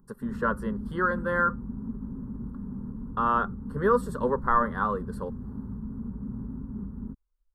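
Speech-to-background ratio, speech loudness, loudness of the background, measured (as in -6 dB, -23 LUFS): 10.5 dB, -27.5 LUFS, -38.0 LUFS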